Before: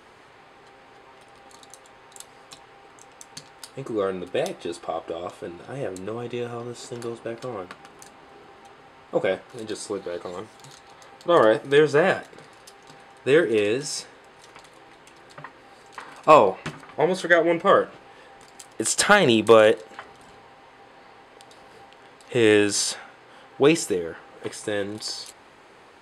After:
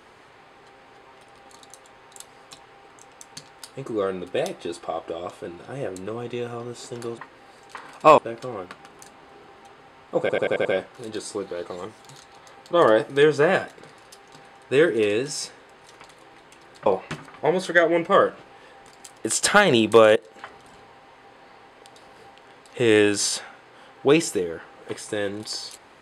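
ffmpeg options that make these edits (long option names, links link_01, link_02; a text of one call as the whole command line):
ffmpeg -i in.wav -filter_complex "[0:a]asplit=10[link_01][link_02][link_03][link_04][link_05][link_06][link_07][link_08][link_09][link_10];[link_01]atrim=end=7.182[link_11];[link_02]atrim=start=15.408:end=16.412[link_12];[link_03]atrim=start=7.178:end=9.292[link_13];[link_04]atrim=start=9.198:end=9.292[link_14];[link_05]atrim=start=9.198:end=9.292[link_15];[link_06]atrim=start=9.198:end=9.292[link_16];[link_07]atrim=start=9.198:end=9.292[link_17];[link_08]atrim=start=9.198:end=15.412[link_18];[link_09]atrim=start=16.408:end=19.71,asetpts=PTS-STARTPTS,afade=type=out:start_time=3.298:duration=0.004:curve=hsin:silence=0.125893[link_19];[link_10]atrim=start=19.71,asetpts=PTS-STARTPTS,afade=type=in:duration=0.25:silence=0.125893[link_20];[link_11][link_12]acrossfade=duration=0.004:curve1=hsin:curve2=hsin[link_21];[link_21][link_13]acrossfade=duration=0.004:curve1=hsin:curve2=hsin[link_22];[link_22][link_14]acrossfade=duration=0.004:curve1=hsin:curve2=hsin[link_23];[link_23][link_15]acrossfade=duration=0.004:curve1=hsin:curve2=hsin[link_24];[link_24][link_16]acrossfade=duration=0.004:curve1=hsin:curve2=hsin[link_25];[link_25][link_17]acrossfade=duration=0.004:curve1=hsin:curve2=hsin[link_26];[link_26][link_18]acrossfade=duration=0.004:curve1=hsin:curve2=hsin[link_27];[link_19][link_20]concat=n=2:v=0:a=1[link_28];[link_27][link_28]acrossfade=duration=0.004:curve1=hsin:curve2=hsin" out.wav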